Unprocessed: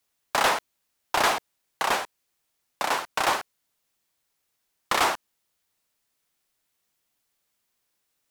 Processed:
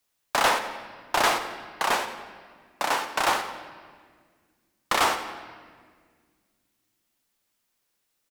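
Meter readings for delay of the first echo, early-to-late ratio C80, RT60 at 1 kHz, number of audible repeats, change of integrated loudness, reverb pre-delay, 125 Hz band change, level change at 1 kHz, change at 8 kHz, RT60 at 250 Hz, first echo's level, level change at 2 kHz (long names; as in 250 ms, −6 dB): 90 ms, 9.5 dB, 1.6 s, 2, 0.0 dB, 3 ms, +0.5 dB, +0.5 dB, +0.5 dB, 2.7 s, −14.5 dB, +0.5 dB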